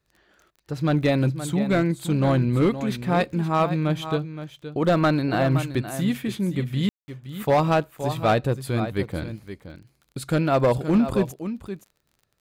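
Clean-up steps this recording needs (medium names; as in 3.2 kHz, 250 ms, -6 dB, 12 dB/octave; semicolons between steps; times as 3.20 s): clip repair -13 dBFS; de-click; room tone fill 6.89–7.08 s; inverse comb 520 ms -11.5 dB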